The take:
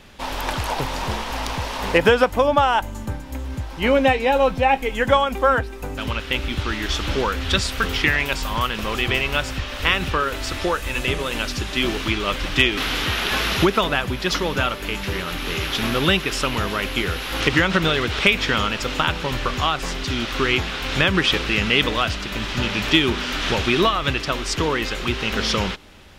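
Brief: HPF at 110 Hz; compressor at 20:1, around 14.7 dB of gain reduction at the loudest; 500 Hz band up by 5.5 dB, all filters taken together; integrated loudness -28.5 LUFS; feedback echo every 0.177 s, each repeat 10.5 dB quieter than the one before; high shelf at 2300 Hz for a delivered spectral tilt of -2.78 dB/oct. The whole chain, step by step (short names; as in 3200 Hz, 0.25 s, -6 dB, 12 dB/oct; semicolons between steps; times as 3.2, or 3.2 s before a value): HPF 110 Hz; bell 500 Hz +6 dB; high shelf 2300 Hz +6.5 dB; compressor 20:1, threshold -20 dBFS; feedback echo 0.177 s, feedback 30%, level -10.5 dB; gain -4.5 dB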